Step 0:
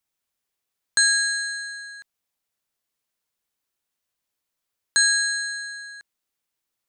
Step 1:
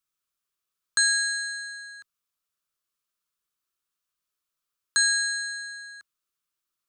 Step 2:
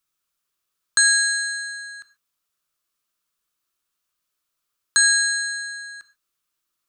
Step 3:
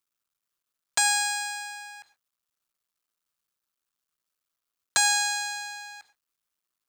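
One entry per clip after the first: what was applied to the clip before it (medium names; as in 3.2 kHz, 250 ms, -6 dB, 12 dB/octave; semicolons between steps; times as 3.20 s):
graphic EQ with 31 bands 100 Hz -11 dB, 250 Hz -9 dB, 500 Hz -7 dB, 800 Hz -12 dB, 1.25 kHz +8 dB, 2 kHz -5 dB; trim -3 dB
gated-style reverb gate 160 ms falling, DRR 11 dB; trim +5.5 dB
cycle switcher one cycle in 2, muted; trim -3 dB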